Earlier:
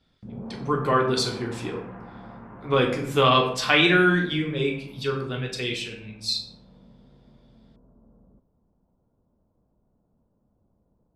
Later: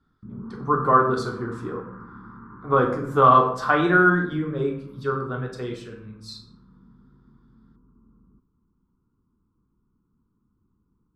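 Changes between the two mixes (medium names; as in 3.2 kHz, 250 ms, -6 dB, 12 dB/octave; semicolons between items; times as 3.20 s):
background: add Chebyshev band-stop 340–1200 Hz, order 2; master: add resonant high shelf 1.8 kHz -11.5 dB, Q 3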